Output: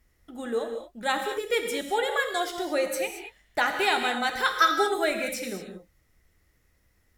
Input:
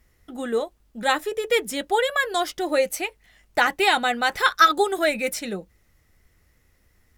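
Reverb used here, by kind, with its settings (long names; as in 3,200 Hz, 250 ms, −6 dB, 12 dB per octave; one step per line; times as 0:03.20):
reverb whose tail is shaped and stops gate 250 ms flat, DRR 4.5 dB
level −5.5 dB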